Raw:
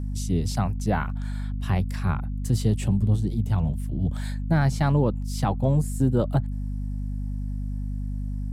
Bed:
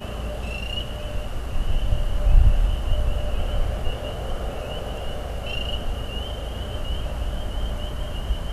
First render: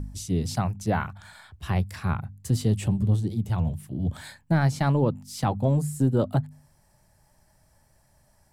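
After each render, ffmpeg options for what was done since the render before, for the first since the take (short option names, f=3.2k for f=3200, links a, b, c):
-af "bandreject=f=50:t=h:w=4,bandreject=f=100:t=h:w=4,bandreject=f=150:t=h:w=4,bandreject=f=200:t=h:w=4,bandreject=f=250:t=h:w=4"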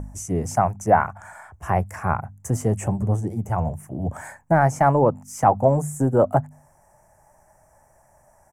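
-af "firequalizer=gain_entry='entry(210,0);entry(690,14);entry(1200,8);entry(2100,3);entry(3900,-24);entry(6100,6);entry(13000,1)':delay=0.05:min_phase=1"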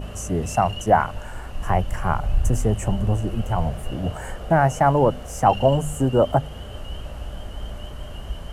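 -filter_complex "[1:a]volume=-5.5dB[a];[0:a][a]amix=inputs=2:normalize=0"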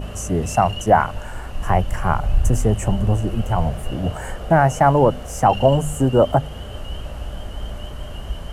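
-af "volume=3dB,alimiter=limit=-3dB:level=0:latency=1"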